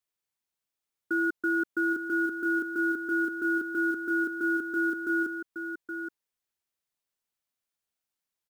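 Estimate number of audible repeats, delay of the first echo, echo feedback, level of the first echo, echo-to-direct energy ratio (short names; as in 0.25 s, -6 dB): 1, 0.821 s, no steady repeat, -9.0 dB, -9.0 dB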